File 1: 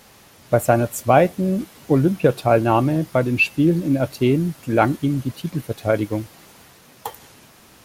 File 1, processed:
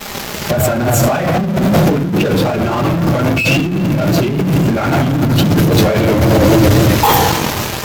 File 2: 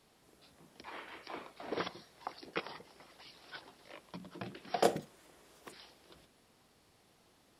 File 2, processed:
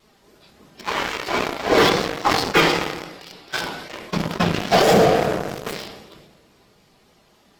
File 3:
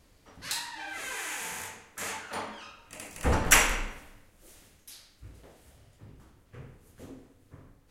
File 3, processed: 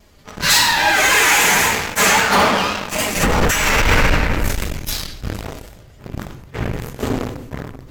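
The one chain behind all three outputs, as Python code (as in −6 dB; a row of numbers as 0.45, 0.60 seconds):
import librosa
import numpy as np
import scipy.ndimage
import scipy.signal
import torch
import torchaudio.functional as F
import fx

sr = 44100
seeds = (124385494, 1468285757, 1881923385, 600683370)

p1 = fx.phase_scramble(x, sr, seeds[0], window_ms=50)
p2 = fx.room_shoebox(p1, sr, seeds[1], volume_m3=3500.0, walls='mixed', distance_m=1.3)
p3 = fx.dynamic_eq(p2, sr, hz=470.0, q=0.81, threshold_db=-27.0, ratio=4.0, max_db=-4)
p4 = fx.fuzz(p3, sr, gain_db=38.0, gate_db=-46.0)
p5 = p3 + F.gain(torch.from_numpy(p4), -8.5).numpy()
p6 = fx.peak_eq(p5, sr, hz=9700.0, db=-9.0, octaves=0.36)
p7 = fx.over_compress(p6, sr, threshold_db=-22.0, ratio=-1.0)
p8 = fx.vibrato(p7, sr, rate_hz=3.7, depth_cents=57.0)
p9 = fx.sustainer(p8, sr, db_per_s=48.0)
y = F.gain(torch.from_numpy(p9), 9.0).numpy()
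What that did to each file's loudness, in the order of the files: +6.5, +21.0, +14.0 LU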